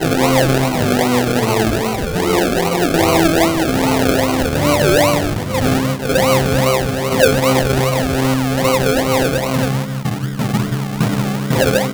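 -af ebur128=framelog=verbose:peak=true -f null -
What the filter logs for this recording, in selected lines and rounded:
Integrated loudness:
  I:         -15.4 LUFS
  Threshold: -25.4 LUFS
Loudness range:
  LRA:         2.7 LU
  Threshold: -35.2 LUFS
  LRA low:   -17.1 LUFS
  LRA high:  -14.5 LUFS
True peak:
  Peak:       -1.4 dBFS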